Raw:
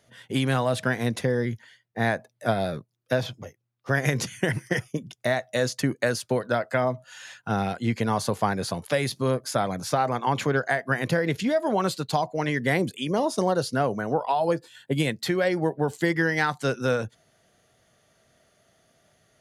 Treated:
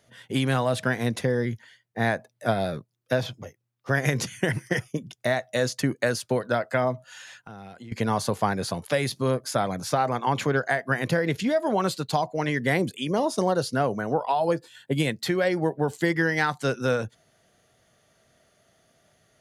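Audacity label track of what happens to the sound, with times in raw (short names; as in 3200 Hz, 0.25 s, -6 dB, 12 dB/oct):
7.210000	7.920000	compressor, threshold -40 dBFS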